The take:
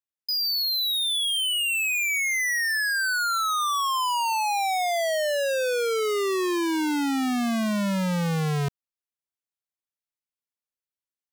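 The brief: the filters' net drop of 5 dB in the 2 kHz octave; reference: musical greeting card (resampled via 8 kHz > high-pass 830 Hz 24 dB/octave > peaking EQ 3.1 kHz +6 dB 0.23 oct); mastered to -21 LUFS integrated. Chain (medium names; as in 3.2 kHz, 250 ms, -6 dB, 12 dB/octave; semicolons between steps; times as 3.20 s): peaking EQ 2 kHz -7 dB; resampled via 8 kHz; high-pass 830 Hz 24 dB/octave; peaking EQ 3.1 kHz +6 dB 0.23 oct; trim +7 dB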